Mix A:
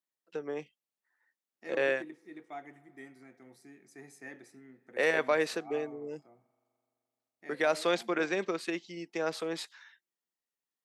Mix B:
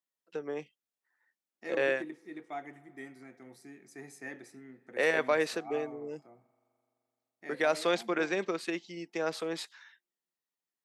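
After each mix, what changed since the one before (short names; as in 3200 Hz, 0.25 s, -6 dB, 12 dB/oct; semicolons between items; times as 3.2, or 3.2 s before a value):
second voice +3.5 dB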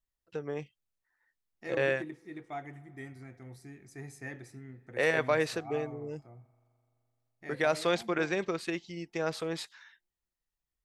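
master: remove HPF 200 Hz 24 dB/oct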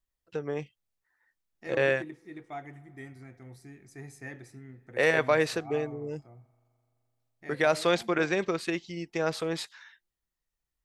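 first voice +3.5 dB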